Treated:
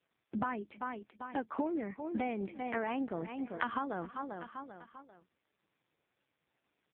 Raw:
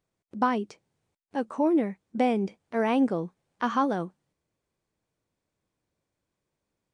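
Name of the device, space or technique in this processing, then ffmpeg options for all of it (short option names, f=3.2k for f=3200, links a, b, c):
voicemail: -af "highpass=450,lowpass=2.9k,equalizer=f=125:t=o:w=1:g=11,equalizer=f=500:t=o:w=1:g=-8,equalizer=f=1k:t=o:w=1:g=-5,aecho=1:1:393|786|1179:0.112|0.046|0.0189,acompressor=threshold=-45dB:ratio=12,volume=14dB" -ar 8000 -c:a libopencore_amrnb -b:a 4750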